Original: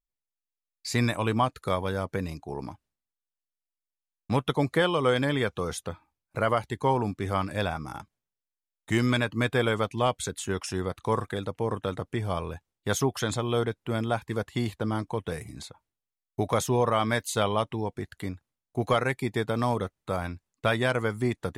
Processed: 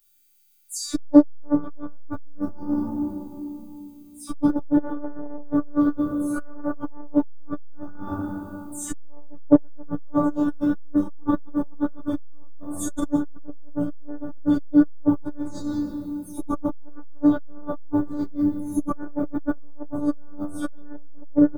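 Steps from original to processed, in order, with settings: delay that grows with frequency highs early, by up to 154 ms; low-pass that closes with the level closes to 920 Hz, closed at -25.5 dBFS; treble shelf 7.7 kHz +7 dB; harmonic-percussive split percussive -7 dB; FFT filter 310 Hz 0 dB, 1.4 kHz +4 dB, 2.3 kHz -20 dB, 6.5 kHz +11 dB; added noise violet -67 dBFS; small resonant body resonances 250/3400 Hz, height 13 dB, ringing for 40 ms; robot voice 293 Hz; doubling 30 ms -12.5 dB; speakerphone echo 200 ms, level -13 dB; reverberation RT60 2.3 s, pre-delay 6 ms, DRR -10 dB; transformer saturation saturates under 460 Hz; trim +1.5 dB

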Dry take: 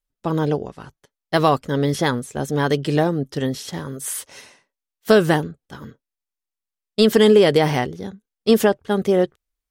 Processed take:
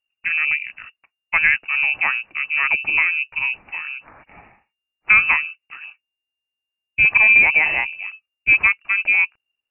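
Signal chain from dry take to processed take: frequency inversion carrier 2.8 kHz; 5.81–8.01 s: band-stop 1.3 kHz, Q 8.2

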